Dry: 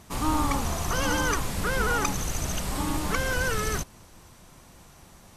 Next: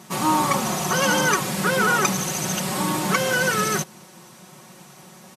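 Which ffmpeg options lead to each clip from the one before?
-af "highpass=f=130:w=0.5412,highpass=f=130:w=1.3066,aecho=1:1:5.4:0.68,volume=5.5dB"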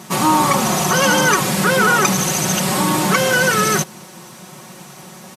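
-filter_complex "[0:a]asplit=2[a][b];[b]alimiter=limit=-16.5dB:level=0:latency=1,volume=-0.5dB[c];[a][c]amix=inputs=2:normalize=0,acrusher=bits=10:mix=0:aa=0.000001,volume=2dB"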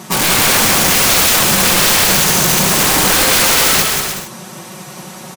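-filter_complex "[0:a]aeval=exprs='(mod(4.47*val(0)+1,2)-1)/4.47':c=same,asplit=2[a][b];[b]aecho=0:1:180|297|373|422.5|454.6:0.631|0.398|0.251|0.158|0.1[c];[a][c]amix=inputs=2:normalize=0,volume=4.5dB"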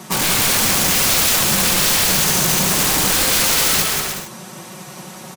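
-filter_complex "[0:a]acrossover=split=240|3000[a][b][c];[b]acompressor=threshold=-17dB:ratio=6[d];[a][d][c]amix=inputs=3:normalize=0,volume=-3.5dB"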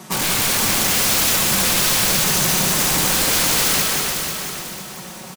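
-af "aecho=1:1:494|988|1482|1976:0.473|0.17|0.0613|0.0221,volume=-2.5dB"

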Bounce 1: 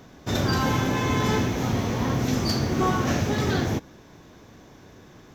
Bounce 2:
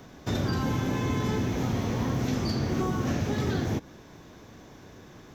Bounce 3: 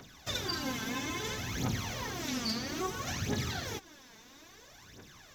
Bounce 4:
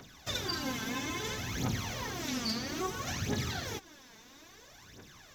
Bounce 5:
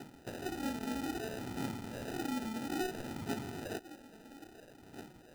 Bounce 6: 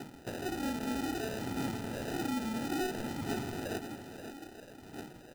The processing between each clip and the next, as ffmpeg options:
-filter_complex "[0:a]acrossover=split=440|5300[a][b][c];[a]acompressor=threshold=-25dB:ratio=4[d];[b]acompressor=threshold=-36dB:ratio=4[e];[c]acompressor=threshold=-51dB:ratio=4[f];[d][e][f]amix=inputs=3:normalize=0"
-af "tiltshelf=f=1.2k:g=-7.5,aphaser=in_gain=1:out_gain=1:delay=4.6:decay=0.68:speed=0.6:type=triangular,volume=-6dB"
-af anull
-af "acompressor=threshold=-39dB:ratio=6,bandpass=f=320:t=q:w=1.5:csg=0,acrusher=samples=40:mix=1:aa=0.000001,volume=9.5dB"
-filter_complex "[0:a]asoftclip=type=tanh:threshold=-32.5dB,asplit=2[a][b];[b]aecho=0:1:528:0.335[c];[a][c]amix=inputs=2:normalize=0,volume=4.5dB"

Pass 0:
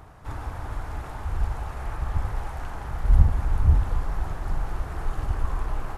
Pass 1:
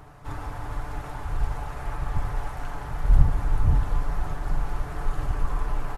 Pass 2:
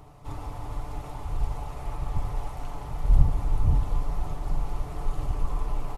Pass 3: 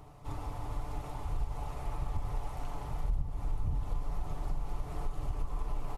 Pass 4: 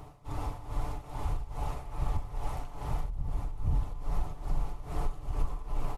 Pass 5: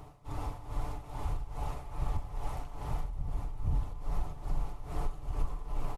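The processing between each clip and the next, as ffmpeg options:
-af "aecho=1:1:6.9:0.48"
-af "equalizer=f=1.6k:t=o:w=0.49:g=-13.5,volume=-1.5dB"
-af "acompressor=threshold=-25dB:ratio=6,volume=-3dB"
-af "tremolo=f=2.4:d=0.76,volume=5.5dB"
-af "aecho=1:1:638:0.112,volume=-2dB"

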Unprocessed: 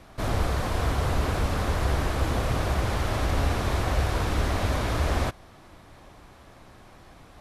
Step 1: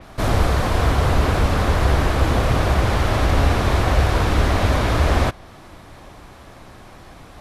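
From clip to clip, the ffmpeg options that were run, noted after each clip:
-af "adynamicequalizer=threshold=0.00316:dfrequency=5100:dqfactor=0.7:tfrequency=5100:tqfactor=0.7:attack=5:release=100:ratio=0.375:range=2:mode=cutabove:tftype=highshelf,volume=8dB"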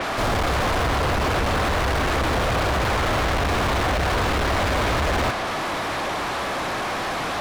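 -filter_complex "[0:a]asoftclip=type=tanh:threshold=-20dB,asplit=2[a][b];[b]highpass=f=720:p=1,volume=33dB,asoftclip=type=tanh:threshold=-20dB[c];[a][c]amix=inputs=2:normalize=0,lowpass=f=3.1k:p=1,volume=-6dB,volume=2.5dB"

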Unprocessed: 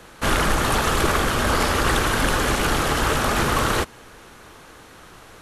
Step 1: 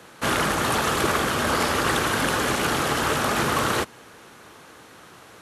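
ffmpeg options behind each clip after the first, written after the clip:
-af "highpass=110,volume=-1.5dB"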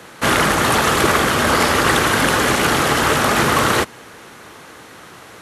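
-af "equalizer=f=2k:t=o:w=0.26:g=3,volume=7dB"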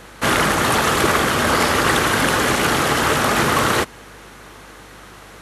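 -af "aeval=exprs='val(0)+0.00501*(sin(2*PI*50*n/s)+sin(2*PI*2*50*n/s)/2+sin(2*PI*3*50*n/s)/3+sin(2*PI*4*50*n/s)/4+sin(2*PI*5*50*n/s)/5)':c=same,volume=-1.5dB"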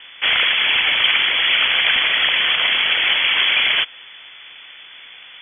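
-af "lowpass=f=3k:t=q:w=0.5098,lowpass=f=3k:t=q:w=0.6013,lowpass=f=3k:t=q:w=0.9,lowpass=f=3k:t=q:w=2.563,afreqshift=-3500,highshelf=f=2k:g=8,volume=-4dB"

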